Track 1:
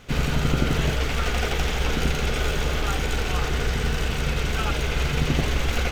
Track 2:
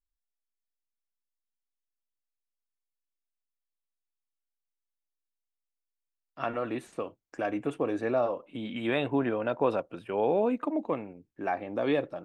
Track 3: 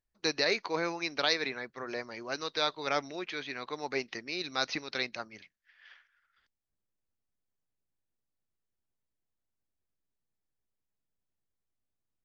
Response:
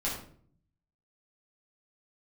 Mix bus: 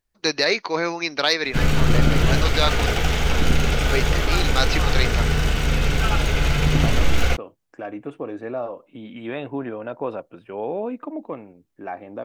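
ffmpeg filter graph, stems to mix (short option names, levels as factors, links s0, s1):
-filter_complex "[0:a]adelay=1450,volume=0.531,asplit=2[s0][s1];[s1]volume=0.251[s2];[1:a]lowpass=f=2900:p=1,adelay=400,volume=0.398[s3];[2:a]volume=1.26,asplit=3[s4][s5][s6];[s4]atrim=end=2.86,asetpts=PTS-STARTPTS,afade=t=out:st=2.856:d=0.004:c=hsin[s7];[s5]atrim=start=2.86:end=3.86,asetpts=PTS-STARTPTS,volume=0[s8];[s6]atrim=start=3.86,asetpts=PTS-STARTPTS,afade=t=in:d=0.004:c=hsin[s9];[s7][s8][s9]concat=n=3:v=0:a=1[s10];[3:a]atrim=start_sample=2205[s11];[s2][s11]afir=irnorm=-1:irlink=0[s12];[s0][s3][s10][s12]amix=inputs=4:normalize=0,acontrast=79"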